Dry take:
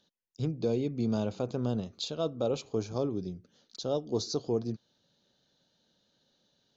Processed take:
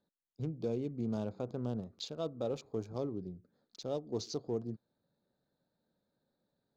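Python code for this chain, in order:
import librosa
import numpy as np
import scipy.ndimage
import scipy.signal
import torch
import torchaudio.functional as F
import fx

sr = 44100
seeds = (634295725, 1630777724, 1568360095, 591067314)

y = fx.wiener(x, sr, points=15)
y = y * librosa.db_to_amplitude(-6.0)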